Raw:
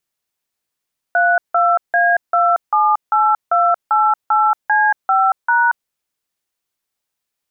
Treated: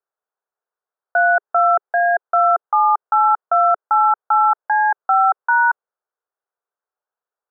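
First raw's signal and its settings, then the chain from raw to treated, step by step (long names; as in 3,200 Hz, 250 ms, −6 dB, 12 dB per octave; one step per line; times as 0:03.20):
touch tones "32A278288C5#", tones 230 ms, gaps 164 ms, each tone −13.5 dBFS
elliptic band-pass filter 410–1,500 Hz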